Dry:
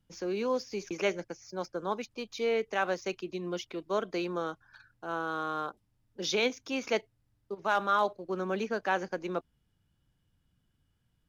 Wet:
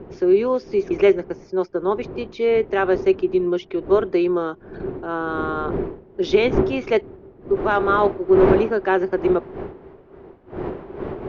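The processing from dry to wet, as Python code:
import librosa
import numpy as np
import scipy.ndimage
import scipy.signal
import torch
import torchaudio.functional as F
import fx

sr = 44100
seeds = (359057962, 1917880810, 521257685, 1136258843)

y = fx.dmg_wind(x, sr, seeds[0], corner_hz=fx.steps((0.0, 370.0), (7.55, 590.0)), level_db=-40.0)
y = scipy.signal.sosfilt(scipy.signal.butter(2, 2800.0, 'lowpass', fs=sr, output='sos'), y)
y = fx.peak_eq(y, sr, hz=380.0, db=13.5, octaves=0.31)
y = F.gain(torch.from_numpy(y), 7.5).numpy()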